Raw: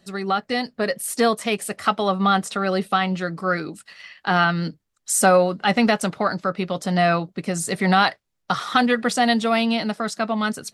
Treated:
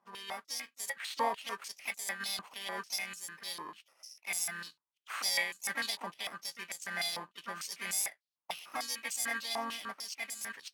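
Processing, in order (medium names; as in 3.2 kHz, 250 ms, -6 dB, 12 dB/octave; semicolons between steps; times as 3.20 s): bit-reversed sample order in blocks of 32 samples; harmony voices +3 st -10 dB; modulation noise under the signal 21 dB; dynamic bell 5.4 kHz, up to -5 dB, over -41 dBFS, Q 4.5; step-sequenced band-pass 6.7 Hz 990–7200 Hz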